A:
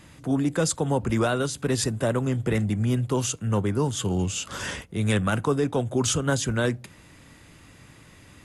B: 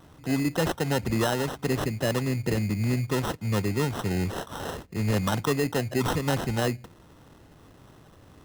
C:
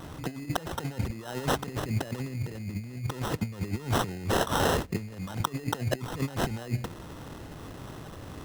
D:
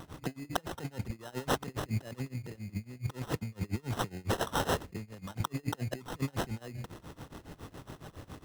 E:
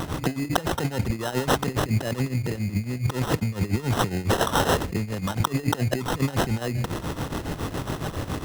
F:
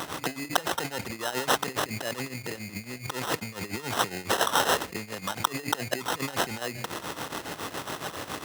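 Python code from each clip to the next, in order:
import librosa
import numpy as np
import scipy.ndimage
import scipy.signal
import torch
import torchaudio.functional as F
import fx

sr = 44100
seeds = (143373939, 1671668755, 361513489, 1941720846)

y1 = fx.sample_hold(x, sr, seeds[0], rate_hz=2300.0, jitter_pct=0)
y1 = y1 * librosa.db_to_amplitude(-2.0)
y2 = fx.over_compress(y1, sr, threshold_db=-33.0, ratio=-0.5)
y2 = y2 * librosa.db_to_amplitude(3.0)
y3 = y2 * (1.0 - 0.91 / 2.0 + 0.91 / 2.0 * np.cos(2.0 * np.pi * 7.2 * (np.arange(len(y2)) / sr)))
y3 = y3 * librosa.db_to_amplitude(-1.5)
y4 = fx.env_flatten(y3, sr, amount_pct=50)
y4 = y4 * librosa.db_to_amplitude(7.5)
y5 = fx.highpass(y4, sr, hz=860.0, slope=6)
y5 = y5 * librosa.db_to_amplitude(1.5)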